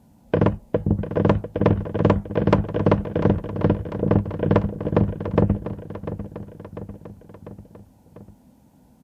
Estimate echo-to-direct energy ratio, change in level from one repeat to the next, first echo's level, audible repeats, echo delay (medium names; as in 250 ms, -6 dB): -10.5 dB, -4.5 dB, -12.0 dB, 4, 696 ms